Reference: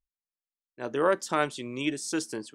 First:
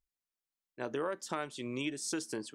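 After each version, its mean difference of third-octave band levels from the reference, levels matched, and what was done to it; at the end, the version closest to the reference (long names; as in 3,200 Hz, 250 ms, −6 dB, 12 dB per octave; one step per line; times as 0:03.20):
3.5 dB: downward compressor 5 to 1, threshold −33 dBFS, peak gain reduction 13.5 dB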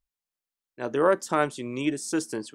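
1.0 dB: dynamic equaliser 3,600 Hz, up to −7 dB, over −45 dBFS, Q 0.72
level +3.5 dB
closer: second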